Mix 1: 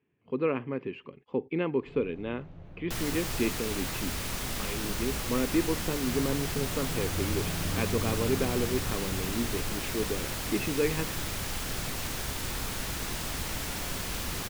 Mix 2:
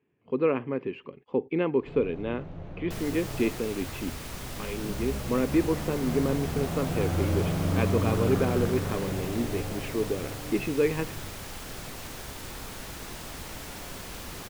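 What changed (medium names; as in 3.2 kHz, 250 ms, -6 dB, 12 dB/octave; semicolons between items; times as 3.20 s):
first sound +6.0 dB; second sound -6.5 dB; master: add peaking EQ 540 Hz +4 dB 2.5 oct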